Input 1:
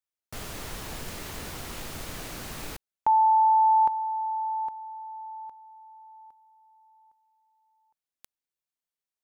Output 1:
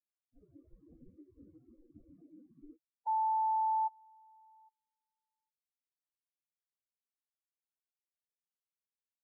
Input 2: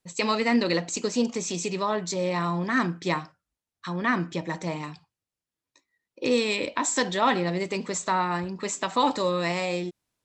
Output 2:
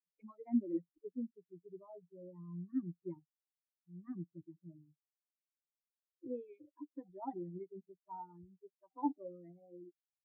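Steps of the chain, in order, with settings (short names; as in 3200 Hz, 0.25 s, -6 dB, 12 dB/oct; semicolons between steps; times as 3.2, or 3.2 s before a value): per-bin expansion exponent 3; low-pass opened by the level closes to 920 Hz, open at -22 dBFS; spectral noise reduction 23 dB; vocal tract filter u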